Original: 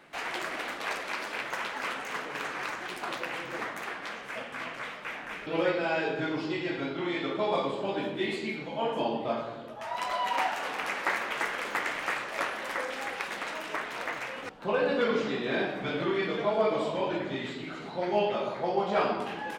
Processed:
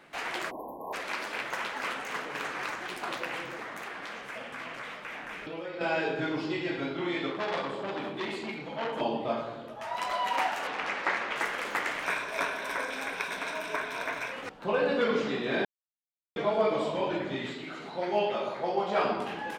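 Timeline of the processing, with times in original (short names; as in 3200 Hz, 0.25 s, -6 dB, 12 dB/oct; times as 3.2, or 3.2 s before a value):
0.5–0.93 spectral delete 1100–11000 Hz
3.46–5.81 compressor, threshold -35 dBFS
7.3–9.01 core saturation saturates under 2100 Hz
10.67–11.36 LPF 5600 Hz
12.05–14.32 ripple EQ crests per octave 1.6, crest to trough 9 dB
15.65–16.36 mute
17.54–19.05 low shelf 180 Hz -8.5 dB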